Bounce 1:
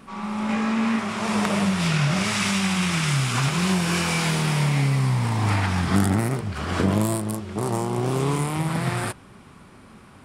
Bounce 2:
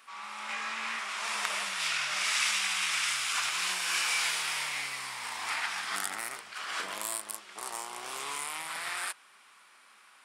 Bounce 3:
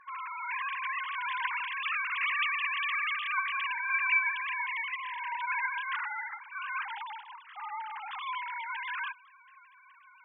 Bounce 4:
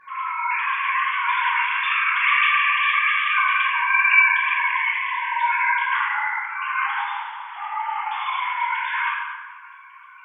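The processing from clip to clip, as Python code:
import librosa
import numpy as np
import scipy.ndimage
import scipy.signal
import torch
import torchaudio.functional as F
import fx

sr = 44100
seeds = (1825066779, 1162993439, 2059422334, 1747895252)

y1 = scipy.signal.sosfilt(scipy.signal.butter(2, 1400.0, 'highpass', fs=sr, output='sos'), x)
y1 = y1 * 10.0 ** (-2.0 / 20.0)
y2 = fx.sine_speech(y1, sr)
y3 = fx.rev_plate(y2, sr, seeds[0], rt60_s=1.6, hf_ratio=0.6, predelay_ms=0, drr_db=-7.5)
y3 = y3 * 10.0 ** (4.0 / 20.0)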